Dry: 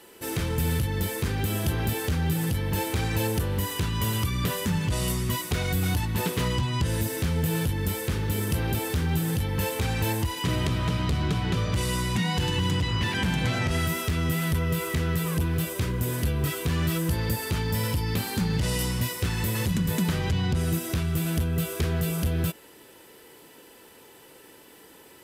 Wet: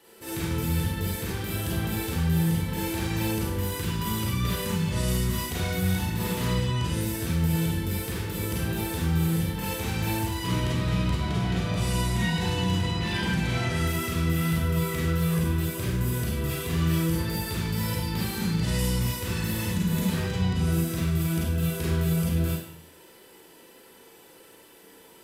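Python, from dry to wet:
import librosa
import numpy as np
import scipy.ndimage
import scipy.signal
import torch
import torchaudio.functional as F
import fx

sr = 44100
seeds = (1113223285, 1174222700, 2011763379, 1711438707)

y = fx.vibrato(x, sr, rate_hz=1.4, depth_cents=7.0)
y = fx.dmg_buzz(y, sr, base_hz=100.0, harmonics=10, level_db=-37.0, tilt_db=-1, odd_only=False, at=(11.26, 13.15), fade=0.02)
y = fx.rev_schroeder(y, sr, rt60_s=0.69, comb_ms=33, drr_db=-5.5)
y = y * 10.0 ** (-7.5 / 20.0)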